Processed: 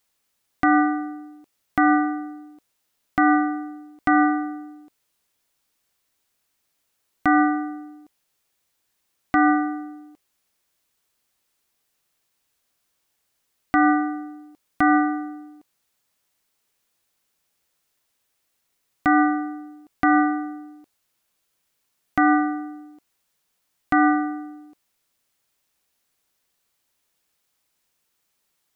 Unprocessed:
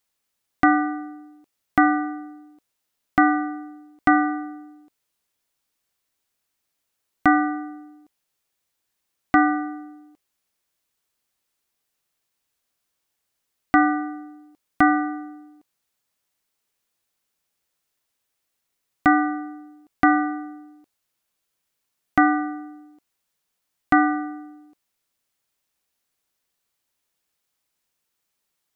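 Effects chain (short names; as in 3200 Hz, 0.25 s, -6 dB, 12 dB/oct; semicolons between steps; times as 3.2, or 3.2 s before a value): limiter -12.5 dBFS, peak gain reduction 8.5 dB; gain +4.5 dB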